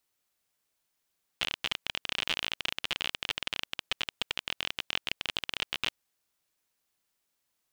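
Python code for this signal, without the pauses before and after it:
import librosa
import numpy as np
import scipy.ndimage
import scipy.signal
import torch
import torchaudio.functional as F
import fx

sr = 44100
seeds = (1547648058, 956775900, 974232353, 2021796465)

y = fx.geiger_clicks(sr, seeds[0], length_s=4.52, per_s=32.0, level_db=-13.0)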